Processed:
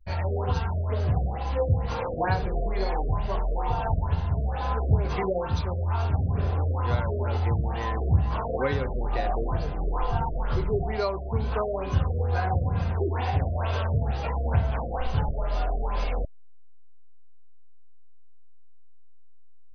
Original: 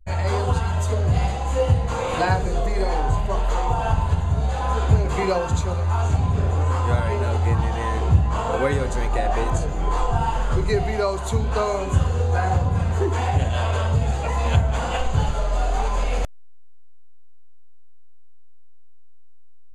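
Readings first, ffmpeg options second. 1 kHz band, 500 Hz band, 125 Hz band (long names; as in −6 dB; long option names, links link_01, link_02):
−6.0 dB, −5.0 dB, −5.0 dB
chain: -af "crystalizer=i=1.5:c=0,afftfilt=real='re*lt(b*sr/1024,680*pow(6300/680,0.5+0.5*sin(2*PI*2.2*pts/sr)))':imag='im*lt(b*sr/1024,680*pow(6300/680,0.5+0.5*sin(2*PI*2.2*pts/sr)))':win_size=1024:overlap=0.75,volume=-5dB"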